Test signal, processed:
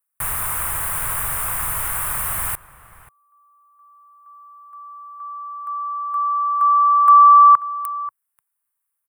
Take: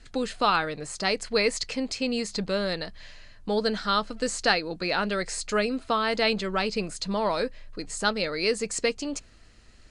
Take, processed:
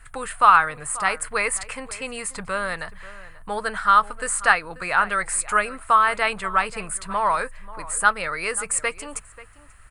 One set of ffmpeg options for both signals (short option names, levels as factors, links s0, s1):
-filter_complex "[0:a]firequalizer=gain_entry='entry(120,0);entry(230,-15);entry(1100,9);entry(4300,-14);entry(6200,-10);entry(9000,13)':delay=0.05:min_phase=1,asplit=2[s0][s1];[s1]adelay=536.4,volume=0.141,highshelf=f=4000:g=-12.1[s2];[s0][s2]amix=inputs=2:normalize=0,volume=1.5"